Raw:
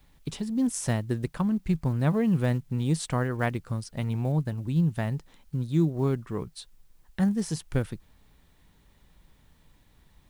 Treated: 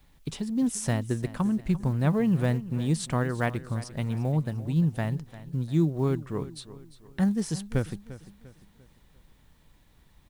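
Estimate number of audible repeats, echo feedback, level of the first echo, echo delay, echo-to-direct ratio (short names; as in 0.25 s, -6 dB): 3, 40%, -16.0 dB, 0.347 s, -15.5 dB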